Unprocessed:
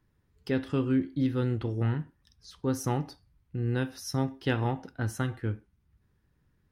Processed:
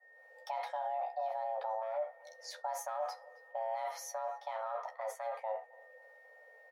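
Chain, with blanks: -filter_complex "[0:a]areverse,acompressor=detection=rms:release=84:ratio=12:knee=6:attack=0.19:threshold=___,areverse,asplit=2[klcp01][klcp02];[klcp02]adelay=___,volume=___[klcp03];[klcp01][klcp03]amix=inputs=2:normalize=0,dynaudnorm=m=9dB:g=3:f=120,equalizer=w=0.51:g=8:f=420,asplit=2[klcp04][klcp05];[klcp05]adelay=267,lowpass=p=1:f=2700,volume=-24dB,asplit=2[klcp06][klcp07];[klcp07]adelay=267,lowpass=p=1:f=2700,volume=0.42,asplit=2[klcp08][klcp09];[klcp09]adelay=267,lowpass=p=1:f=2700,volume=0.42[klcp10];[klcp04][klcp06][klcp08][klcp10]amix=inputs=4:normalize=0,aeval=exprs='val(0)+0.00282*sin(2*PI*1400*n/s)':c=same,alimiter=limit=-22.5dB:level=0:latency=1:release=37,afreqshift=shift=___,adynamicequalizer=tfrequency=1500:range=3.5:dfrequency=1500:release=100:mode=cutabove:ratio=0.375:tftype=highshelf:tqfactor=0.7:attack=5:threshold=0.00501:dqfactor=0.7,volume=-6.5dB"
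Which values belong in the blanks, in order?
-36dB, 13, -6dB, 440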